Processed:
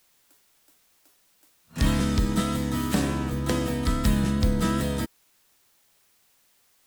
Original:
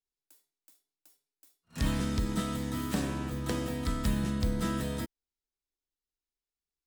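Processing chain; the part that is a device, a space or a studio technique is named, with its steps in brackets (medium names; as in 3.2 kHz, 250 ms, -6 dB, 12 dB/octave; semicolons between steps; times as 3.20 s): plain cassette with noise reduction switched in (tape noise reduction on one side only decoder only; wow and flutter 28 cents; white noise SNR 37 dB); trim +7 dB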